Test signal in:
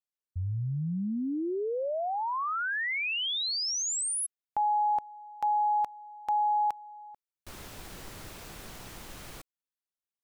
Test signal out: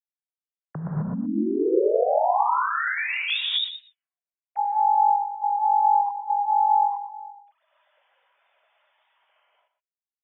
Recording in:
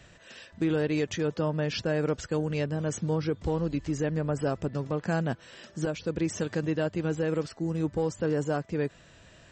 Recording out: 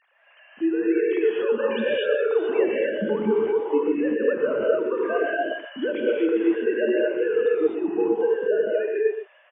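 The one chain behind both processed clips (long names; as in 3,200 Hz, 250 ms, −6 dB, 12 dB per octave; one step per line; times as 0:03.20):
three sine waves on the formant tracks
reverb whose tail is shaped and stops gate 280 ms rising, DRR −5.5 dB
speech leveller within 4 dB 0.5 s
on a send: single-tap delay 122 ms −11.5 dB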